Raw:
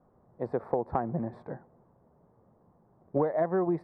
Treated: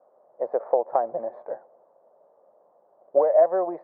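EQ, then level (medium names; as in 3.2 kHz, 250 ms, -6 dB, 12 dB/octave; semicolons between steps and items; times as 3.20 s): resonant high-pass 580 Hz, resonance Q 4.9; low-pass 1.8 kHz 12 dB/octave; 0.0 dB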